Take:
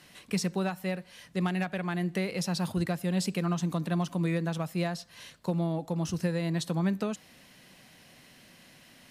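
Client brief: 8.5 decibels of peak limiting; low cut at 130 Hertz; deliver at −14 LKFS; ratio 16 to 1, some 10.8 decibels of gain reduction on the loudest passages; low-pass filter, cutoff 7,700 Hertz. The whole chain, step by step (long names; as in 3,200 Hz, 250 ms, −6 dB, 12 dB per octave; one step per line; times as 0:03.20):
high-pass filter 130 Hz
low-pass filter 7,700 Hz
downward compressor 16 to 1, threshold −36 dBFS
level +29 dB
brickwall limiter −3.5 dBFS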